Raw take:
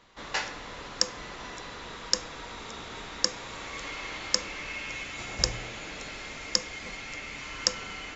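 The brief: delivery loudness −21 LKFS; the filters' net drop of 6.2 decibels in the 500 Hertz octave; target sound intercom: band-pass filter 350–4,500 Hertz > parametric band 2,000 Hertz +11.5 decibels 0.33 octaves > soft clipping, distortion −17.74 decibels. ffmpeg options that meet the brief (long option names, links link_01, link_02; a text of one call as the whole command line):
ffmpeg -i in.wav -af "highpass=350,lowpass=4500,equalizer=frequency=500:width_type=o:gain=-6,equalizer=frequency=2000:width_type=o:width=0.33:gain=11.5,asoftclip=threshold=-14.5dB,volume=12dB" out.wav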